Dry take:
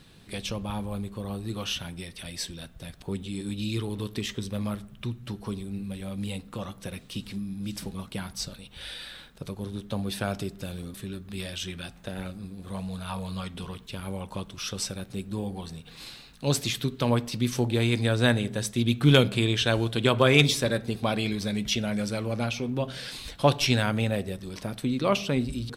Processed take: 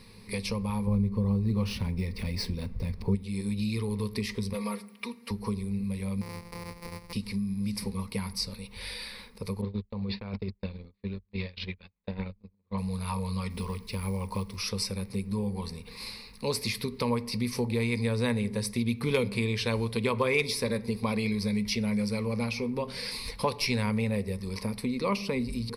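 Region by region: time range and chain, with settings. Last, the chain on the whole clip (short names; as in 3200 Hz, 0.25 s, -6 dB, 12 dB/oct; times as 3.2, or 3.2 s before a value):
0.87–3.15 median filter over 5 samples + low shelf 450 Hz +12 dB
4.53–5.31 HPF 420 Hz + comb 4.3 ms, depth 89%
6.21–7.13 sample sorter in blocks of 256 samples + compressor 10:1, threshold -36 dBFS
9.61–12.78 gate -35 dBFS, range -41 dB + negative-ratio compressor -33 dBFS, ratio -0.5 + steep low-pass 4400 Hz 48 dB/oct
13.5–14.57 low shelf 120 Hz +2.5 dB + companded quantiser 6-bit
whole clip: ripple EQ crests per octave 0.89, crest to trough 14 dB; compressor 2:1, threshold -30 dBFS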